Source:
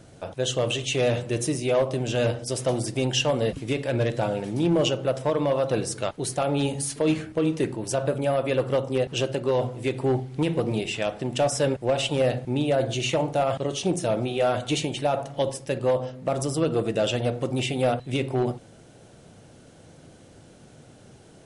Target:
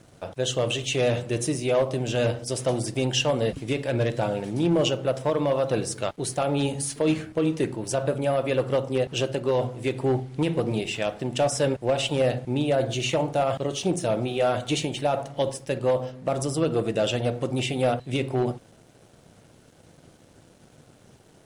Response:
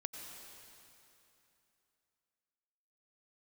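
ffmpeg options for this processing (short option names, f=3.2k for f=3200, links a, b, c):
-af "aeval=exprs='sgn(val(0))*max(abs(val(0))-0.00158,0)':c=same"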